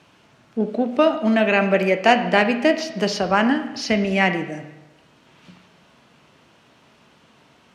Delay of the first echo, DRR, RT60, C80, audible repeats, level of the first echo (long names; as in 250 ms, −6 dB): no echo audible, 7.5 dB, 1.0 s, 12.0 dB, no echo audible, no echo audible